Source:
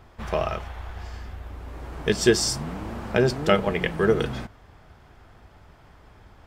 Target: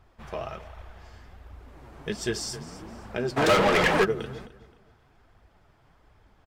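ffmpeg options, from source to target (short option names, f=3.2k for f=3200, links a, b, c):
-filter_complex "[0:a]aecho=1:1:262|524|786:0.158|0.0507|0.0162,asplit=3[a][b][c];[a]afade=t=out:st=3.36:d=0.02[d];[b]asplit=2[e][f];[f]highpass=f=720:p=1,volume=36dB,asoftclip=type=tanh:threshold=-3.5dB[g];[e][g]amix=inputs=2:normalize=0,lowpass=f=3.6k:p=1,volume=-6dB,afade=t=in:st=3.36:d=0.02,afade=t=out:st=4.03:d=0.02[h];[c]afade=t=in:st=4.03:d=0.02[i];[d][h][i]amix=inputs=3:normalize=0,flanger=delay=0.7:depth=9:regen=44:speed=1.3:shape=triangular,volume=-5dB"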